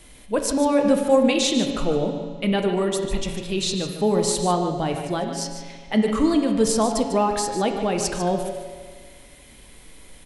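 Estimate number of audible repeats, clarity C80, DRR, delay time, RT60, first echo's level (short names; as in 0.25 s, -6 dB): 1, 5.0 dB, 3.0 dB, 0.148 s, 1.7 s, -10.0 dB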